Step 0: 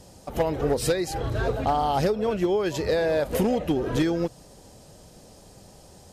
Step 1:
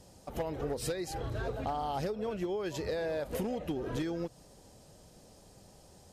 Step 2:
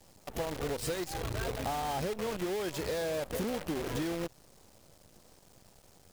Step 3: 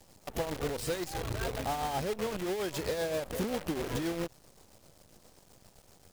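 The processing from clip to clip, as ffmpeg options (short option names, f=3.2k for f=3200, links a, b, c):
-af "acompressor=threshold=-25dB:ratio=2.5,volume=-7.5dB"
-af "acrusher=bits=7:dc=4:mix=0:aa=0.000001"
-af "tremolo=f=7.6:d=0.43,volume=2.5dB"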